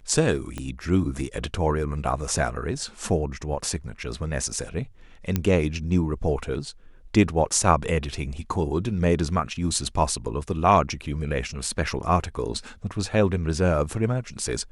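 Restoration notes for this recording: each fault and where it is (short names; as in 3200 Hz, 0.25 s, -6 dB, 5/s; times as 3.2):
0.58 pop -18 dBFS
5.36 pop -9 dBFS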